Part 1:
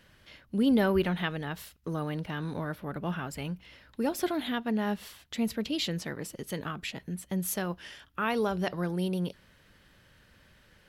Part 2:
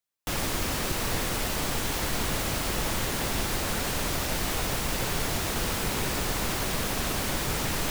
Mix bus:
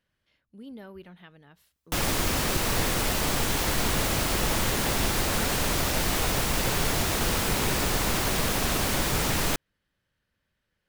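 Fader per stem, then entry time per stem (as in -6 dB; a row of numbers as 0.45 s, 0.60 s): -19.0 dB, +3.0 dB; 0.00 s, 1.65 s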